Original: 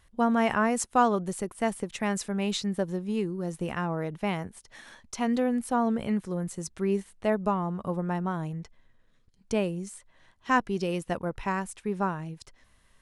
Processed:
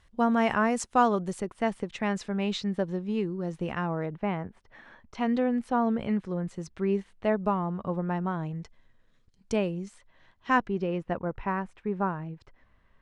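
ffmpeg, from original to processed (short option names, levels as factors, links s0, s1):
-af "asetnsamples=n=441:p=0,asendcmd='1.4 lowpass f 4300;4.06 lowpass f 1900;5.15 lowpass f 3700;8.56 lowpass f 8400;9.56 lowpass f 4300;10.68 lowpass f 2000',lowpass=6900"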